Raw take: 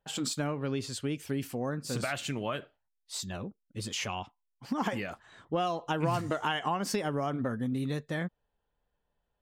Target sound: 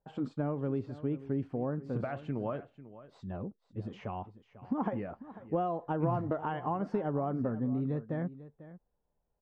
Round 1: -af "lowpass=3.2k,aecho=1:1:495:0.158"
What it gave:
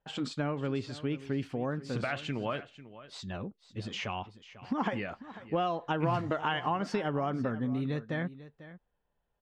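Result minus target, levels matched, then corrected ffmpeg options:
4000 Hz band +18.0 dB
-af "lowpass=880,aecho=1:1:495:0.158"

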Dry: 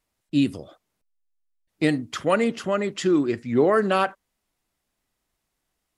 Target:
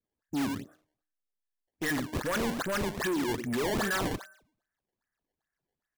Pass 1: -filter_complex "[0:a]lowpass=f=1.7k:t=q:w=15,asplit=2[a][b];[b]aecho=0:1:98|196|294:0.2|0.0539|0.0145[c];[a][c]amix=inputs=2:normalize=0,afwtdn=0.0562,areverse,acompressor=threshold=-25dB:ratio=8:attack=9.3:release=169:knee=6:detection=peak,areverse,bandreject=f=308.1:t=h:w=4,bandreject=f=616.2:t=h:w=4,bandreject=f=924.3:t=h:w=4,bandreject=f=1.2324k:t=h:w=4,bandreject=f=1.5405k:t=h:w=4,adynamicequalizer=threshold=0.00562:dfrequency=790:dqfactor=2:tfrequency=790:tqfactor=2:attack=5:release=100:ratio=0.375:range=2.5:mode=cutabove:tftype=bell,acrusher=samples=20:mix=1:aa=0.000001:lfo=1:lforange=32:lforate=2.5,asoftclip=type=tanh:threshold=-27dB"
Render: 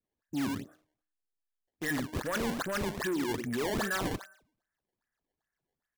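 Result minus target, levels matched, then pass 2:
compressor: peak gain reduction +6.5 dB
-filter_complex "[0:a]lowpass=f=1.7k:t=q:w=15,asplit=2[a][b];[b]aecho=0:1:98|196|294:0.2|0.0539|0.0145[c];[a][c]amix=inputs=2:normalize=0,afwtdn=0.0562,areverse,acompressor=threshold=-17.5dB:ratio=8:attack=9.3:release=169:knee=6:detection=peak,areverse,bandreject=f=308.1:t=h:w=4,bandreject=f=616.2:t=h:w=4,bandreject=f=924.3:t=h:w=4,bandreject=f=1.2324k:t=h:w=4,bandreject=f=1.5405k:t=h:w=4,adynamicequalizer=threshold=0.00562:dfrequency=790:dqfactor=2:tfrequency=790:tqfactor=2:attack=5:release=100:ratio=0.375:range=2.5:mode=cutabove:tftype=bell,acrusher=samples=20:mix=1:aa=0.000001:lfo=1:lforange=32:lforate=2.5,asoftclip=type=tanh:threshold=-27dB"

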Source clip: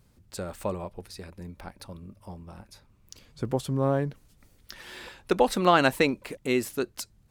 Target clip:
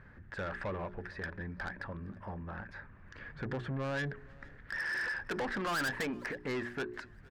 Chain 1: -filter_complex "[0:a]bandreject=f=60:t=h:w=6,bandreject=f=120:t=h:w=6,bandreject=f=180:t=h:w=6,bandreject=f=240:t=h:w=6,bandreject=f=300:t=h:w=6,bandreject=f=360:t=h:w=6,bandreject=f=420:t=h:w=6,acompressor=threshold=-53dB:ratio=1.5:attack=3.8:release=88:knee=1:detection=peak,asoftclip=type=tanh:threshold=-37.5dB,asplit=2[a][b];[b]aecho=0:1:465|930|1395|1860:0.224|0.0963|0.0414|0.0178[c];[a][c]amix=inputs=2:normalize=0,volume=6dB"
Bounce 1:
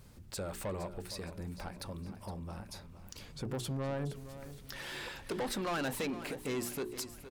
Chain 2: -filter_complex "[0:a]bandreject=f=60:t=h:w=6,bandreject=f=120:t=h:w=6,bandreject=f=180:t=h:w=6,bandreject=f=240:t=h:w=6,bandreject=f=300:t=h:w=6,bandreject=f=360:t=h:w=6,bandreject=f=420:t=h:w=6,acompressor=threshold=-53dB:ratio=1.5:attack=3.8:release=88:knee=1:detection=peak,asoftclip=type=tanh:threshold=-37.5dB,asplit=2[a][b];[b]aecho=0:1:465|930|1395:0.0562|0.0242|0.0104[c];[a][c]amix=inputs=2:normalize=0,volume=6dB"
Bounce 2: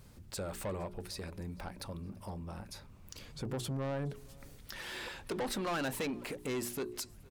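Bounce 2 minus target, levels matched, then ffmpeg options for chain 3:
2000 Hz band -7.5 dB
-filter_complex "[0:a]bandreject=f=60:t=h:w=6,bandreject=f=120:t=h:w=6,bandreject=f=180:t=h:w=6,bandreject=f=240:t=h:w=6,bandreject=f=300:t=h:w=6,bandreject=f=360:t=h:w=6,bandreject=f=420:t=h:w=6,acompressor=threshold=-53dB:ratio=1.5:attack=3.8:release=88:knee=1:detection=peak,lowpass=f=1.7k:t=q:w=8.4,asoftclip=type=tanh:threshold=-37.5dB,asplit=2[a][b];[b]aecho=0:1:465|930|1395:0.0562|0.0242|0.0104[c];[a][c]amix=inputs=2:normalize=0,volume=6dB"

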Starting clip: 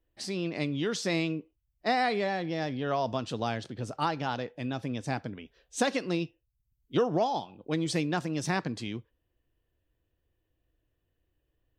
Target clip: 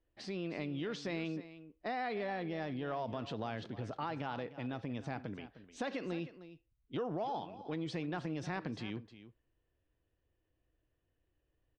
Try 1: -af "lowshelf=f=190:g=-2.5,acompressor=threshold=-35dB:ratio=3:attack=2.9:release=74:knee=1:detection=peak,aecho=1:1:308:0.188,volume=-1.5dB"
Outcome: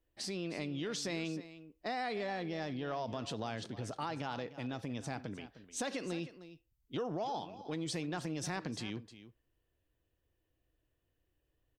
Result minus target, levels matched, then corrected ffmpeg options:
4000 Hz band +4.5 dB
-af "lowshelf=f=190:g=-2.5,acompressor=threshold=-35dB:ratio=3:attack=2.9:release=74:knee=1:detection=peak,lowpass=3.1k,aecho=1:1:308:0.188,volume=-1.5dB"

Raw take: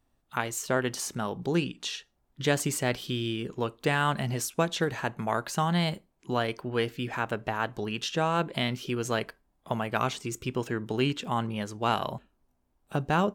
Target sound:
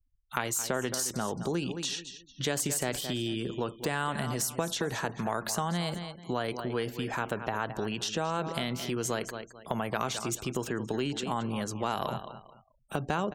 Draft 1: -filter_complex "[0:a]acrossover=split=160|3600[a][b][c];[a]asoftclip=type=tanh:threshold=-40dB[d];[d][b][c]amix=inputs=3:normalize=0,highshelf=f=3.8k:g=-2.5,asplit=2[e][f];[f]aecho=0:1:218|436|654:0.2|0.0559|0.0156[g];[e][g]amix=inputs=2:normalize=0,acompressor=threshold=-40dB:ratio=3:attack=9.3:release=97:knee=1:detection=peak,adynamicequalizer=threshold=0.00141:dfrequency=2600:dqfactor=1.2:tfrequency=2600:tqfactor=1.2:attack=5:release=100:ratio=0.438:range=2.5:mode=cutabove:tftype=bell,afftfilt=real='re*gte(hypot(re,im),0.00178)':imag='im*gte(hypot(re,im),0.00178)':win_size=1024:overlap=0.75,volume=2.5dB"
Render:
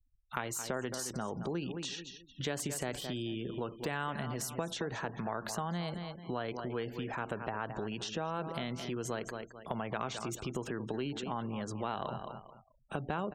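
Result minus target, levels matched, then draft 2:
compressor: peak gain reduction +5 dB; 8000 Hz band -3.0 dB
-filter_complex "[0:a]acrossover=split=160|3600[a][b][c];[a]asoftclip=type=tanh:threshold=-40dB[d];[d][b][c]amix=inputs=3:normalize=0,highshelf=f=3.8k:g=6,asplit=2[e][f];[f]aecho=0:1:218|436|654:0.2|0.0559|0.0156[g];[e][g]amix=inputs=2:normalize=0,acompressor=threshold=-32dB:ratio=3:attack=9.3:release=97:knee=1:detection=peak,adynamicequalizer=threshold=0.00141:dfrequency=2600:dqfactor=1.2:tfrequency=2600:tqfactor=1.2:attack=5:release=100:ratio=0.438:range=2.5:mode=cutabove:tftype=bell,afftfilt=real='re*gte(hypot(re,im),0.00178)':imag='im*gte(hypot(re,im),0.00178)':win_size=1024:overlap=0.75,volume=2.5dB"

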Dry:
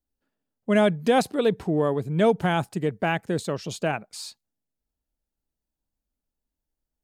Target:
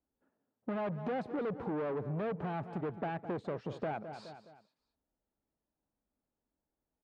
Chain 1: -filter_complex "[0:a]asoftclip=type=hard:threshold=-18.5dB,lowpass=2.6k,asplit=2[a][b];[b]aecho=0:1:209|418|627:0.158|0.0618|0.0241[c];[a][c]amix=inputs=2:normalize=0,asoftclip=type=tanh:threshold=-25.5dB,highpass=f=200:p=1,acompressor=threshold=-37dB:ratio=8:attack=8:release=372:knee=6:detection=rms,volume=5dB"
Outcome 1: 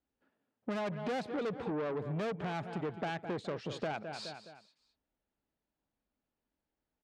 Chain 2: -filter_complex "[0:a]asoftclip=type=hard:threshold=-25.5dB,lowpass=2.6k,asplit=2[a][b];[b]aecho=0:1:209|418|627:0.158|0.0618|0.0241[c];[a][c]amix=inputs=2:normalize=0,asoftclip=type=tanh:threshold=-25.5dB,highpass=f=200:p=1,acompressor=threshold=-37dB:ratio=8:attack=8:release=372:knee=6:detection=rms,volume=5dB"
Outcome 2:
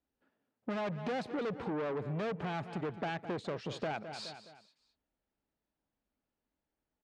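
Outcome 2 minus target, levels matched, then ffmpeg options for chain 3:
2000 Hz band +4.0 dB
-filter_complex "[0:a]asoftclip=type=hard:threshold=-25.5dB,lowpass=1.2k,asplit=2[a][b];[b]aecho=0:1:209|418|627:0.158|0.0618|0.0241[c];[a][c]amix=inputs=2:normalize=0,asoftclip=type=tanh:threshold=-25.5dB,highpass=f=200:p=1,acompressor=threshold=-37dB:ratio=8:attack=8:release=372:knee=6:detection=rms,volume=5dB"

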